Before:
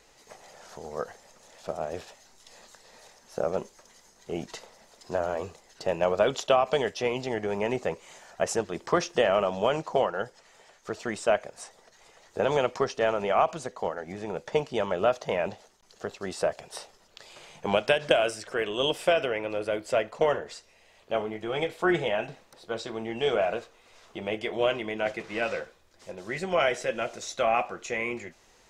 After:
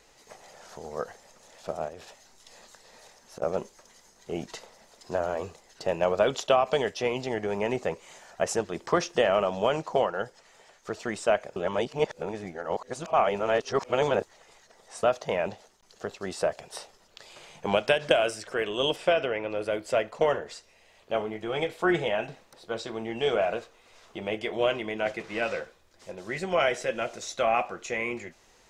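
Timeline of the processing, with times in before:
0:01.88–0:03.42: downward compressor, threshold −39 dBFS
0:11.56–0:15.03: reverse
0:18.96–0:19.59: high-frequency loss of the air 70 metres

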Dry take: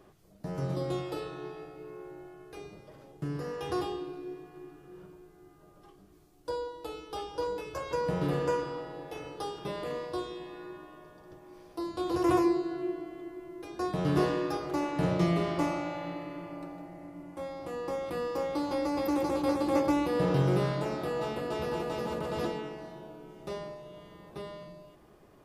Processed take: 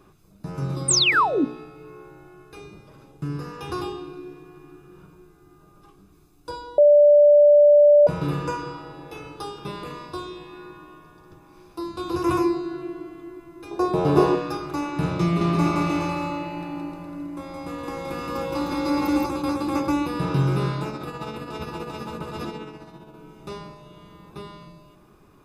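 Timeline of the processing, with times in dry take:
0:00.88–0:01.45: sound drawn into the spectrogram fall 240–9,400 Hz −23 dBFS
0:06.78–0:08.07: beep over 587 Hz −7.5 dBFS
0:13.71–0:14.35: flat-topped bell 580 Hz +11.5 dB
0:15.24–0:19.26: bouncing-ball delay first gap 170 ms, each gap 0.8×, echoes 6, each echo −2 dB
0:20.89–0:23.14: amplitude tremolo 15 Hz, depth 47%
whole clip: comb filter 0.8 ms, depth 50%; hum removal 60.68 Hz, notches 12; level +3.5 dB

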